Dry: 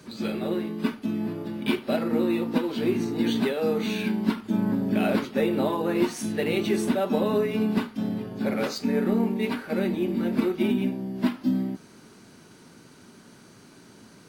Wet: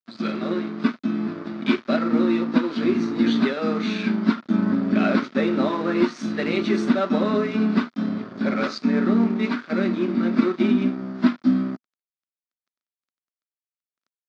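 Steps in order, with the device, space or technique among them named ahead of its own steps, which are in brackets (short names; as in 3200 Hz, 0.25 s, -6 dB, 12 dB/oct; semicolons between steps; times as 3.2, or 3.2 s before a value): blown loudspeaker (crossover distortion -40 dBFS; speaker cabinet 190–5200 Hz, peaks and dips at 240 Hz +4 dB, 460 Hz -7 dB, 830 Hz -8 dB, 1300 Hz +7 dB, 2900 Hz -6 dB); gain +5.5 dB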